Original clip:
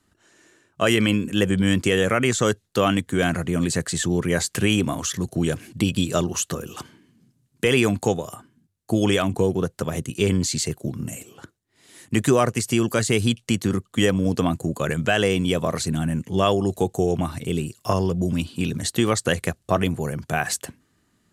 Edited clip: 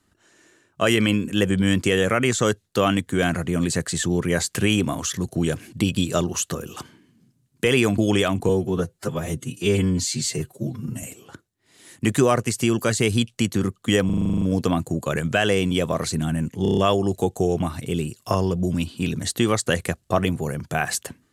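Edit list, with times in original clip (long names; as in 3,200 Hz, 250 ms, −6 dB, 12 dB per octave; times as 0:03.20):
0:07.98–0:08.92: remove
0:09.43–0:11.12: time-stretch 1.5×
0:14.15: stutter 0.04 s, 10 plays
0:16.36: stutter 0.03 s, 6 plays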